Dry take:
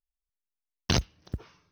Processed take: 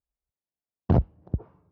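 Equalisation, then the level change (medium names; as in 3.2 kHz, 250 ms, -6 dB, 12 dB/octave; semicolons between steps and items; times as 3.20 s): high-pass 52 Hz; resonant low-pass 750 Hz, resonance Q 1.6; bass shelf 300 Hz +8.5 dB; 0.0 dB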